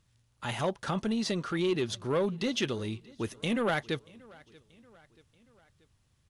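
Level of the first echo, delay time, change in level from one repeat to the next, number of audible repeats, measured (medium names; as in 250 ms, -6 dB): -24.0 dB, 633 ms, -5.5 dB, 2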